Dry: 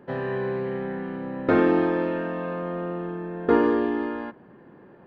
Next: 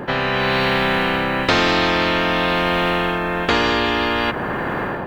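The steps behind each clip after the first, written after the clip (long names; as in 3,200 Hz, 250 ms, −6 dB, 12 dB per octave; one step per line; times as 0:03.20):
automatic gain control gain up to 14.5 dB
every bin compressed towards the loudest bin 4 to 1
level −2.5 dB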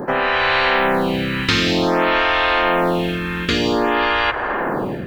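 phaser with staggered stages 0.53 Hz
level +4 dB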